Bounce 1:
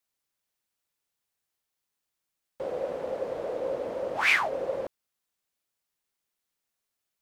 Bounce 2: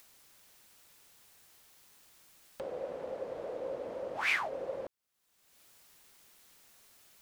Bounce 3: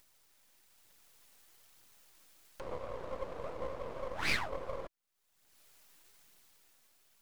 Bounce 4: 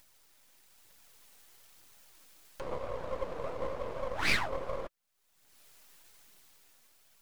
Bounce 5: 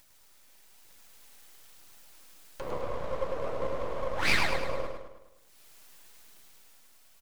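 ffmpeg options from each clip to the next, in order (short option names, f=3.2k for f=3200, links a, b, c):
-af "acompressor=mode=upward:threshold=-30dB:ratio=2.5,volume=-7.5dB"
-af "dynaudnorm=f=130:g=13:m=5dB,aphaser=in_gain=1:out_gain=1:delay=4.1:decay=0.34:speed=1.1:type=triangular,aeval=exprs='max(val(0),0)':c=same,volume=-3.5dB"
-af "flanger=delay=1.2:depth=6.6:regen=-61:speed=0.99:shape=sinusoidal,volume=8dB"
-af "aecho=1:1:105|210|315|420|525|630:0.562|0.281|0.141|0.0703|0.0351|0.0176,volume=2dB"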